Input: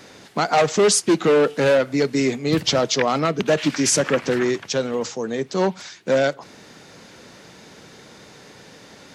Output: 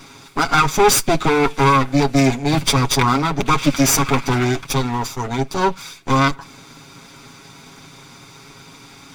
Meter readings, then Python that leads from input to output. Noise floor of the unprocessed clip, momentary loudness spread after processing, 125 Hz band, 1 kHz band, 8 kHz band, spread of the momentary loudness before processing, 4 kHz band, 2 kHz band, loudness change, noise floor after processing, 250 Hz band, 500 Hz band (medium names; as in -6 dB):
-46 dBFS, 9 LU, +9.0 dB, +8.0 dB, +2.5 dB, 9 LU, +2.5 dB, +4.0 dB, +3.0 dB, -43 dBFS, +3.5 dB, -2.5 dB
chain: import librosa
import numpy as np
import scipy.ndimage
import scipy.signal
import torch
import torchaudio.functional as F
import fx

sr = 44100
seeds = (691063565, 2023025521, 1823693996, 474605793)

y = fx.lower_of_two(x, sr, delay_ms=0.84)
y = y + 0.65 * np.pad(y, (int(7.3 * sr / 1000.0), 0))[:len(y)]
y = F.gain(torch.from_numpy(y), 3.0).numpy()